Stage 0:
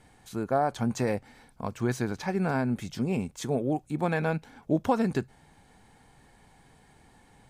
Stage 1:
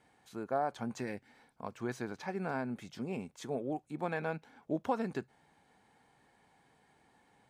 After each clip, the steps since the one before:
gain on a spectral selection 0:01.01–0:01.30, 430–1,400 Hz −8 dB
high-pass filter 300 Hz 6 dB per octave
high-shelf EQ 4,800 Hz −8 dB
level −6 dB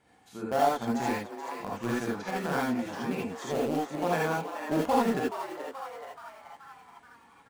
in parallel at −9 dB: bit reduction 5 bits
on the sum: echo with shifted repeats 428 ms, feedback 56%, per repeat +140 Hz, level −10 dB
reverb whose tail is shaped and stops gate 100 ms rising, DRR −4 dB

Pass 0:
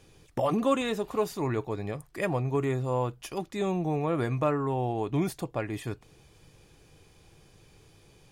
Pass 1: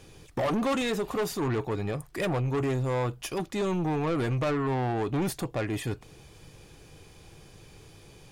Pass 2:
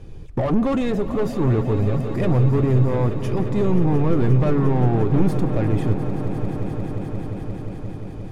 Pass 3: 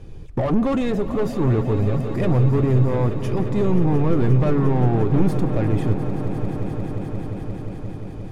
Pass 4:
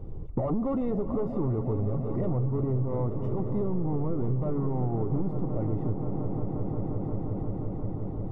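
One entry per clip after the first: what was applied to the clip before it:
soft clipping −30 dBFS, distortion −8 dB; level +6 dB
spectral tilt −3.5 dB per octave; echo that builds up and dies away 176 ms, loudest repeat 5, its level −14 dB; level +1.5 dB
no processing that can be heard
downward compressor 4 to 1, threshold −26 dBFS, peak gain reduction 13 dB; Savitzky-Golay smoothing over 65 samples

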